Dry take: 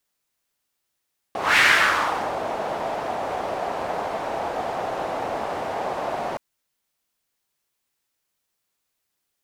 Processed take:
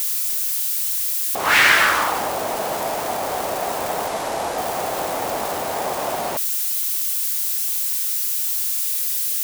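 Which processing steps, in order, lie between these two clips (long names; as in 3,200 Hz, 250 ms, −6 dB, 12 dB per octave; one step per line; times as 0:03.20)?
spike at every zero crossing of −21.5 dBFS
0:04.07–0:04.58: low-pass filter 11,000 Hz 12 dB per octave
level +2.5 dB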